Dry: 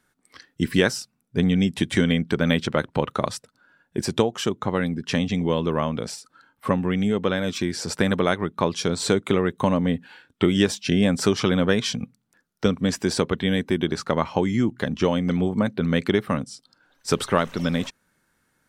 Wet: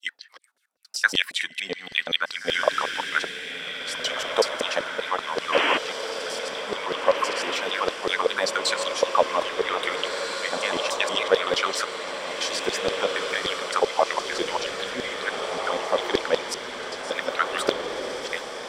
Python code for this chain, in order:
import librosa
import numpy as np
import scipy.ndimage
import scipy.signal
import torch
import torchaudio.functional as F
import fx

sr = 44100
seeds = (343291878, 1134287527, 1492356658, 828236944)

p1 = fx.block_reorder(x, sr, ms=94.0, group=7)
p2 = fx.filter_lfo_highpass(p1, sr, shape='saw_down', hz=5.2, low_hz=450.0, high_hz=4600.0, q=3.9)
p3 = fx.spec_paint(p2, sr, seeds[0], shape='noise', start_s=5.52, length_s=0.26, low_hz=240.0, high_hz=3300.0, level_db=-20.0)
p4 = p3 + fx.echo_diffused(p3, sr, ms=1785, feedback_pct=62, wet_db=-5.0, dry=0)
y = p4 * librosa.db_to_amplitude(-2.5)